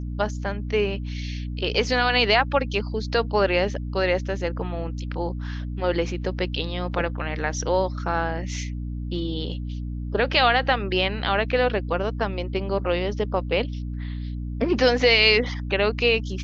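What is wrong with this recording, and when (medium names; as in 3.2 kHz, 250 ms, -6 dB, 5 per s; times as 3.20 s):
hum 60 Hz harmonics 5 -30 dBFS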